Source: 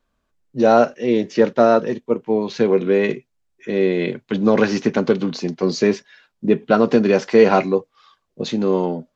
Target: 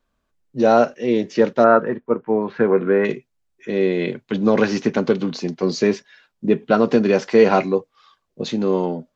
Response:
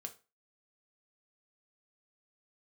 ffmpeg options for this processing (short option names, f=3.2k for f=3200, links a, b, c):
-filter_complex "[0:a]asettb=1/sr,asplit=3[a][b][c];[a]atrim=end=1.644[d];[b]atrim=start=1.64:end=3.05,asetpts=PTS-STARTPTS,afade=t=in:d=0.004:c=qsin,afade=t=out:st=1.406:d=0.004:c=qsin,lowpass=f=1.5k:t=q:w=2.5[e];[c]atrim=start=3.046[f];[d][e]acrossfade=d=0.004:c1=hsin:c2=qsin[g];[g][f]acrossfade=d=0.004:c1=qsin:c2=hsin,volume=-1dB"